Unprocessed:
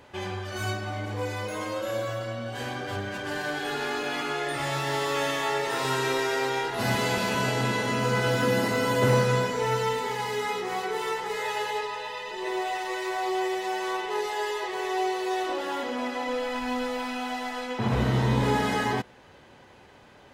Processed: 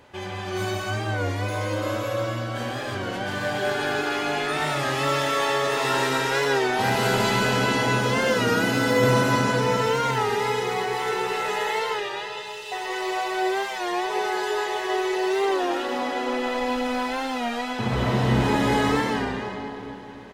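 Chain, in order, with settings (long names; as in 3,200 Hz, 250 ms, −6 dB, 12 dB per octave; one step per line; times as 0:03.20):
0:12.00–0:12.72: elliptic high-pass filter 2,700 Hz
slap from a distant wall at 160 metres, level −17 dB
comb and all-pass reverb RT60 2.7 s, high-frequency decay 0.85×, pre-delay 95 ms, DRR −2.5 dB
wow of a warped record 33 1/3 rpm, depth 100 cents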